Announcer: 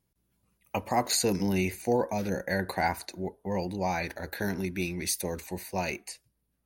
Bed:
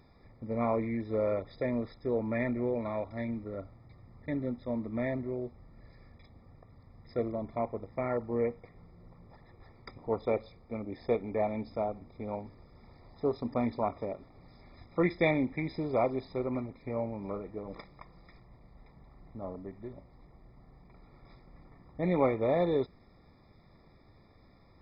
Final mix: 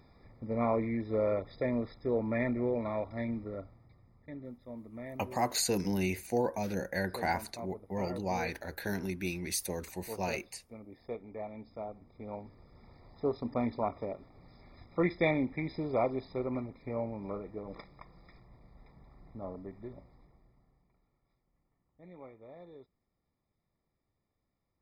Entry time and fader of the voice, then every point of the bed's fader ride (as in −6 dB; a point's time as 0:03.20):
4.45 s, −4.0 dB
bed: 0:03.46 0 dB
0:04.27 −11 dB
0:11.51 −11 dB
0:12.76 −1.5 dB
0:20.03 −1.5 dB
0:21.27 −23.5 dB